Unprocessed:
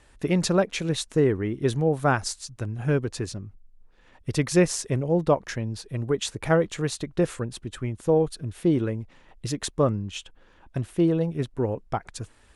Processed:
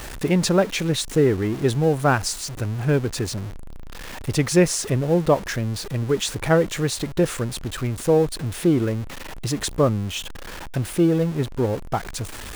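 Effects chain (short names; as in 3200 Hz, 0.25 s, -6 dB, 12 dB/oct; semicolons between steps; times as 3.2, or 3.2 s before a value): zero-crossing step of -32 dBFS; gain +2.5 dB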